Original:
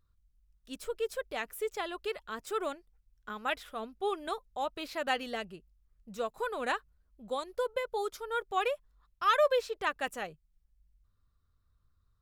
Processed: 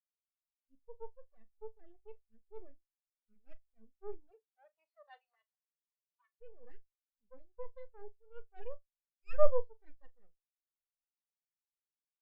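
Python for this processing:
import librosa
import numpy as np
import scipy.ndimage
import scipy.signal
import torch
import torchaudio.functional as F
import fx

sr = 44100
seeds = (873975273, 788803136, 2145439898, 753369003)

p1 = fx.lower_of_two(x, sr, delay_ms=0.42)
p2 = np.maximum(p1, 0.0)
p3 = fx.highpass(p2, sr, hz=fx.line((4.29, 340.0), (6.4, 1100.0)), slope=24, at=(4.29, 6.4), fade=0.02)
p4 = p3 + fx.room_flutter(p3, sr, wall_m=7.0, rt60_s=0.26, dry=0)
p5 = fx.spectral_expand(p4, sr, expansion=2.5)
y = F.gain(torch.from_numpy(p5), 8.5).numpy()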